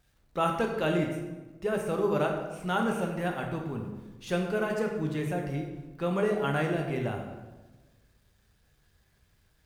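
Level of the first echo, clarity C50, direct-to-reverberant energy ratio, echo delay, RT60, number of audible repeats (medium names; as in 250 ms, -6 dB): no echo, 4.5 dB, 1.5 dB, no echo, 1.2 s, no echo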